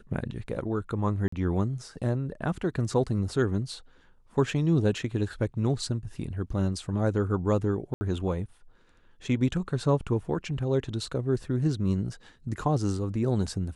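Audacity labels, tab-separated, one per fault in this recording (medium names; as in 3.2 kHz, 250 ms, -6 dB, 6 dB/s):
1.280000	1.320000	dropout 44 ms
7.940000	8.010000	dropout 70 ms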